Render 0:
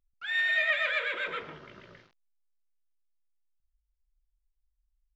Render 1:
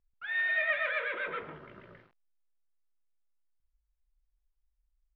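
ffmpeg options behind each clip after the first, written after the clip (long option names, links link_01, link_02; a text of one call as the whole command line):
ffmpeg -i in.wav -af "lowpass=2000" out.wav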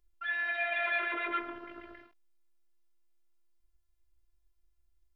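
ffmpeg -i in.wav -af "alimiter=level_in=3.5dB:limit=-24dB:level=0:latency=1:release=12,volume=-3.5dB,afftfilt=real='hypot(re,im)*cos(PI*b)':imag='0':win_size=512:overlap=0.75,volume=7.5dB" out.wav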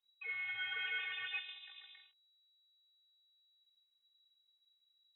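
ffmpeg -i in.wav -af "lowpass=frequency=3300:width_type=q:width=0.5098,lowpass=frequency=3300:width_type=q:width=0.6013,lowpass=frequency=3300:width_type=q:width=0.9,lowpass=frequency=3300:width_type=q:width=2.563,afreqshift=-3900,volume=-8dB" out.wav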